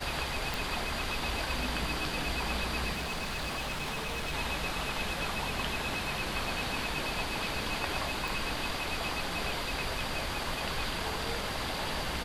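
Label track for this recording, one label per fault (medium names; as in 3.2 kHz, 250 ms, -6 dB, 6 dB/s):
0.540000	0.540000	pop
2.920000	4.340000	clipped -31.5 dBFS
8.280000	8.280000	pop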